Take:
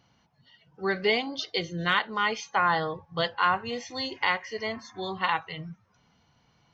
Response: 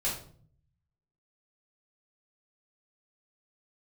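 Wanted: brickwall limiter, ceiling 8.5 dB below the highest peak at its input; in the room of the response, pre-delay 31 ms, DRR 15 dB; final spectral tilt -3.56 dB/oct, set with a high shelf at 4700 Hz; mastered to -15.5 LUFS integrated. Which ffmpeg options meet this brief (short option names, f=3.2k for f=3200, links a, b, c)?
-filter_complex "[0:a]highshelf=f=4.7k:g=6,alimiter=limit=-17.5dB:level=0:latency=1,asplit=2[a][b];[1:a]atrim=start_sample=2205,adelay=31[c];[b][c]afir=irnorm=-1:irlink=0,volume=-21dB[d];[a][d]amix=inputs=2:normalize=0,volume=15dB"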